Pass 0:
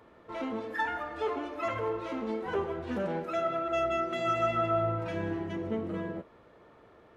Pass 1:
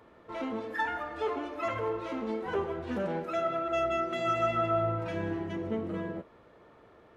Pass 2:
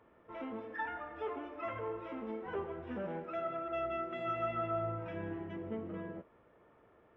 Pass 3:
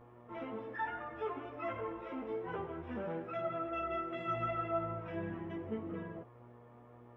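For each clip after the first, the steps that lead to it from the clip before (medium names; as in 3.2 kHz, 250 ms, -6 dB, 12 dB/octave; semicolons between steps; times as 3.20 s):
no audible change
Savitzky-Golay filter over 25 samples; trim -7.5 dB
mains buzz 120 Hz, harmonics 10, -58 dBFS -4 dB/octave; chorus voices 4, 0.35 Hz, delay 15 ms, depth 4 ms; trim +3.5 dB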